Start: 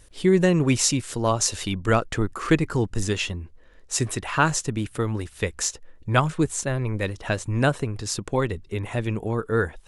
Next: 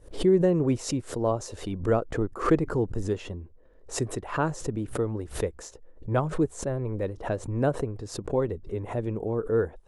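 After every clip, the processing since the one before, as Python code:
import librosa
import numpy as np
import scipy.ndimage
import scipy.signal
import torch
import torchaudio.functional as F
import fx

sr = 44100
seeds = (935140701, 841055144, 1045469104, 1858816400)

y = fx.curve_eq(x, sr, hz=(200.0, 480.0, 2600.0), db=(0, 6, -13))
y = fx.pre_swell(y, sr, db_per_s=140.0)
y = y * librosa.db_to_amplitude(-5.5)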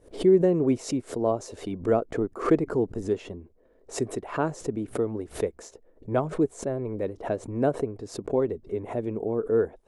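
y = fx.low_shelf(x, sr, hz=100.0, db=-8.0)
y = fx.small_body(y, sr, hz=(250.0, 400.0, 650.0, 2200.0), ring_ms=20, db=6)
y = y * librosa.db_to_amplitude(-3.0)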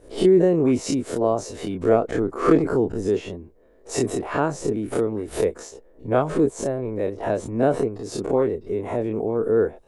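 y = fx.spec_dilate(x, sr, span_ms=60)
y = y * librosa.db_to_amplitude(1.5)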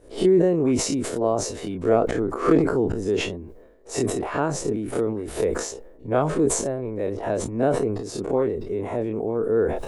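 y = fx.sustainer(x, sr, db_per_s=57.0)
y = y * librosa.db_to_amplitude(-2.0)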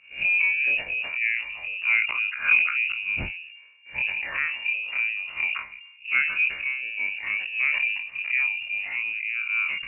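y = fx.spec_ripple(x, sr, per_octave=0.9, drift_hz=-0.3, depth_db=7)
y = fx.freq_invert(y, sr, carrier_hz=2800)
y = y * librosa.db_to_amplitude(-3.5)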